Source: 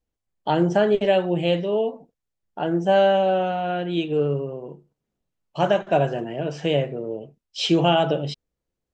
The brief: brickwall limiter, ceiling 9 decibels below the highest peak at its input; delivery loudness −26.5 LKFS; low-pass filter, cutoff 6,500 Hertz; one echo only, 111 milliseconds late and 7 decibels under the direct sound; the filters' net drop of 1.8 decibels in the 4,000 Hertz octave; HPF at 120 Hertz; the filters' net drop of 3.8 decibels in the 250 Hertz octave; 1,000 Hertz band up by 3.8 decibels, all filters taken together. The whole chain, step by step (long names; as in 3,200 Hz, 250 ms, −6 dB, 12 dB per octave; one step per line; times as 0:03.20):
high-pass filter 120 Hz
low-pass filter 6,500 Hz
parametric band 250 Hz −6.5 dB
parametric band 1,000 Hz +6.5 dB
parametric band 4,000 Hz −3 dB
brickwall limiter −14 dBFS
single-tap delay 111 ms −7 dB
level −2.5 dB